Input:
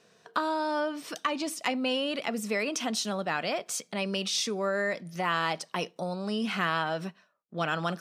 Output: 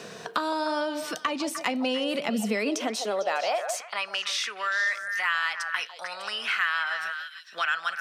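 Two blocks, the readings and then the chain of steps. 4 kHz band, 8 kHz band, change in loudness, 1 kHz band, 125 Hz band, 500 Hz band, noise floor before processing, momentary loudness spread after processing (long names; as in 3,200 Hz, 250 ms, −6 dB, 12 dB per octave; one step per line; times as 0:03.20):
+2.5 dB, −0.5 dB, +2.5 dB, +1.5 dB, can't be measured, +0.5 dB, −65 dBFS, 6 LU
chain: high-pass filter sweep 65 Hz → 1,600 Hz, 0:01.37–0:04.26
echo through a band-pass that steps 150 ms, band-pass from 620 Hz, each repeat 1.4 octaves, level −6.5 dB
multiband upward and downward compressor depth 70%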